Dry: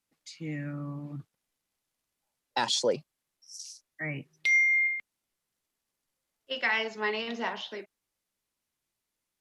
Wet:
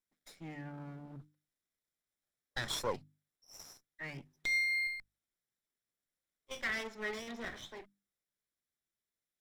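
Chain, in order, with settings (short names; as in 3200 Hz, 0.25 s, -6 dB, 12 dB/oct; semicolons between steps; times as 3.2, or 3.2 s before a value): minimum comb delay 0.55 ms; bell 790 Hz +4.5 dB 1.2 oct; notches 50/100/150/200/250/300 Hz; gain -8.5 dB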